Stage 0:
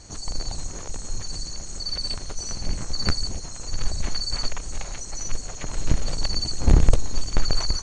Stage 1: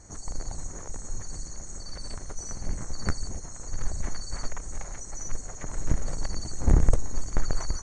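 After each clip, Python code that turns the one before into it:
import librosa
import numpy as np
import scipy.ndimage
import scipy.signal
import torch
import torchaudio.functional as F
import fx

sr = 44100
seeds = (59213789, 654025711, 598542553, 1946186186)

y = fx.band_shelf(x, sr, hz=3500.0, db=-12.0, octaves=1.2)
y = y * 10.0 ** (-4.0 / 20.0)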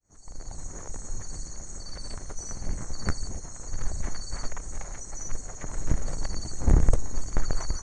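y = fx.fade_in_head(x, sr, length_s=0.78)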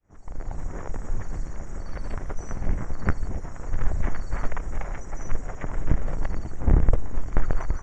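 y = fx.rider(x, sr, range_db=3, speed_s=0.5)
y = scipy.signal.savgol_filter(y, 25, 4, mode='constant')
y = y * 10.0 ** (4.0 / 20.0)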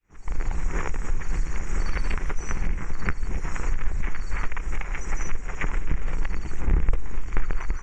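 y = fx.recorder_agc(x, sr, target_db=-12.5, rise_db_per_s=35.0, max_gain_db=30)
y = fx.graphic_eq_15(y, sr, hz=(100, 250, 630, 2500), db=(-11, -6, -11, 10))
y = y * 10.0 ** (-1.5 / 20.0)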